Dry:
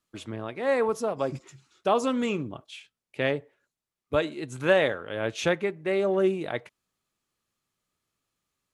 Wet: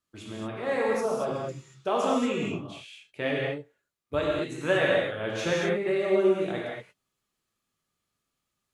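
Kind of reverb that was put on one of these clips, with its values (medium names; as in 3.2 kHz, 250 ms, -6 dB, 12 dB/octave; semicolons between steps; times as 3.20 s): gated-style reverb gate 260 ms flat, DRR -4 dB; trim -5.5 dB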